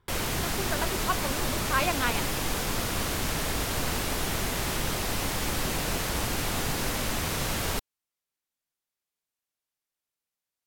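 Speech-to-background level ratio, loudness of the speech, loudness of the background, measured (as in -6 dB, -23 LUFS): -3.0 dB, -32.0 LUFS, -29.0 LUFS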